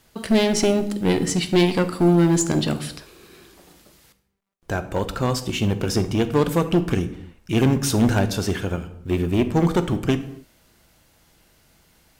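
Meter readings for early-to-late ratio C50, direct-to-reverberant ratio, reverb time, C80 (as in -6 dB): 13.0 dB, 10.0 dB, not exponential, 16.0 dB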